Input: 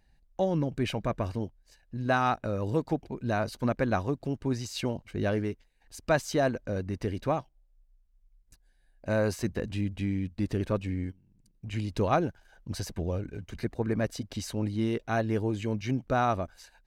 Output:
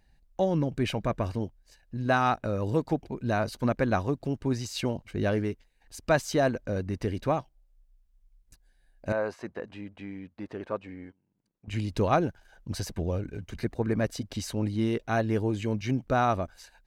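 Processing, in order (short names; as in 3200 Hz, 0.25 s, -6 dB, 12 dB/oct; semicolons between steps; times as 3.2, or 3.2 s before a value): 9.12–11.68 band-pass 930 Hz, Q 0.88; gain +1.5 dB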